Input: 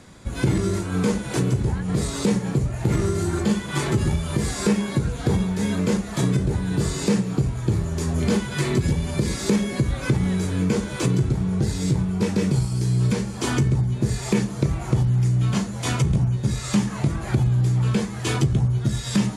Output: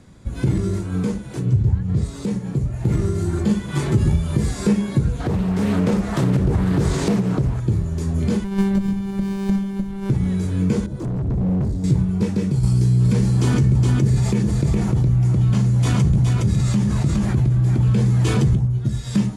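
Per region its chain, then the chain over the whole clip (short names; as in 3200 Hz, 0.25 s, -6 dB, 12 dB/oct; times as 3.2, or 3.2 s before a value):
1.45–2.05 LPF 7600 Hz + bell 94 Hz +11.5 dB 1.1 oct
5.2–7.6 bell 980 Hz +7.5 dB 2.7 oct + compressor 3:1, threshold -21 dBFS + Doppler distortion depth 0.44 ms
8.44–10.1 robotiser 196 Hz + running maximum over 65 samples
10.86–11.84 EQ curve 320 Hz 0 dB, 800 Hz -9 dB, 2800 Hz -21 dB, 4000 Hz -14 dB + hard clip -27 dBFS
12.63–18.55 echo 0.415 s -3.5 dB + fast leveller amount 70%
whole clip: low shelf 340 Hz +10 dB; AGC; gain -7 dB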